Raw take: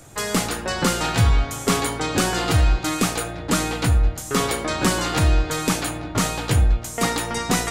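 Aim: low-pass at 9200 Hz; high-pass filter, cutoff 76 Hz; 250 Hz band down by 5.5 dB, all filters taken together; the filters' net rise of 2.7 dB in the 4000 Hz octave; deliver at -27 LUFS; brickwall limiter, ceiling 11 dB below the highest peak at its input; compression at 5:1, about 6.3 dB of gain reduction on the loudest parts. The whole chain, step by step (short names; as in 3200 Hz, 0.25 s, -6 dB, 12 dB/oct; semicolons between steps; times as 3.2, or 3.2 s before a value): HPF 76 Hz; LPF 9200 Hz; bell 250 Hz -8 dB; bell 4000 Hz +3.5 dB; compressor 5:1, threshold -23 dBFS; gain +3.5 dB; limiter -18 dBFS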